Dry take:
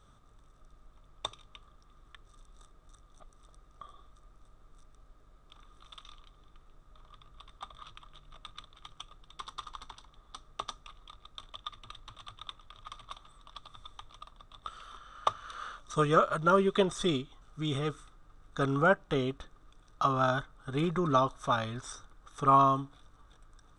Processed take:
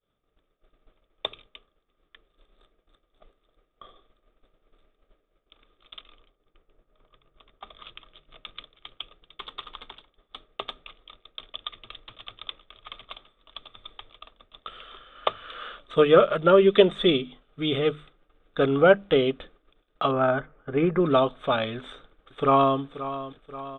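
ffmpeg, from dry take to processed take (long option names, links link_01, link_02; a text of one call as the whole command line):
ffmpeg -i in.wav -filter_complex "[0:a]asettb=1/sr,asplit=3[link_01][link_02][link_03];[link_01]atrim=end=6.014[link_04];[link_02]atrim=start=6.01:end=7.67,asetpts=PTS-STARTPTS,afade=type=in:duration=0.004:curve=qsin,afade=type=out:start_time=1.656:duration=0.004:curve=qsin,lowpass=frequency=1700:poles=1[link_05];[link_03]atrim=start=7.666[link_06];[link_04][link_05]acrossfade=duration=0.004:curve1=hsin:curve2=qsin[link_07];[link_07][link_06]acrossfade=duration=0.004:curve1=qsin:curve2=hsin,asettb=1/sr,asplit=3[link_08][link_09][link_10];[link_08]atrim=end=20.114[link_11];[link_09]atrim=start=20.11:end=21,asetpts=PTS-STARTPTS,afade=type=in:duration=0.004:curve=qsin,afade=type=out:start_time=0.886:duration=0.004:curve=qsin,lowpass=frequency=2200:width=0.5412,lowpass=frequency=2200:width=1.3066[link_12];[link_10]atrim=start=20.996[link_13];[link_11][link_12]acrossfade=duration=0.004:curve1=hsin:curve2=qsin[link_14];[link_14][link_13]acrossfade=duration=0.004:curve1=qsin:curve2=hsin,asplit=2[link_15][link_16];[link_16]afade=type=in:start_time=21.77:duration=0.01,afade=type=out:start_time=22.79:duration=0.01,aecho=0:1:530|1060|1590|2120|2650|3180:0.223872|0.12313|0.0677213|0.0372467|0.0204857|0.0112671[link_17];[link_15][link_17]amix=inputs=2:normalize=0,bandreject=frequency=50:width_type=h:width=6,bandreject=frequency=100:width_type=h:width=6,bandreject=frequency=150:width_type=h:width=6,bandreject=frequency=200:width_type=h:width=6,bandreject=frequency=250:width_type=h:width=6,agate=range=-33dB:threshold=-48dB:ratio=3:detection=peak,firequalizer=gain_entry='entry(120,0);entry(180,6);entry(280,7);entry(470,13);entry(1000,-1);entry(2300,12);entry(3400,11);entry(5200,-29);entry(7800,-17);entry(11000,-14)':delay=0.05:min_phase=1" out.wav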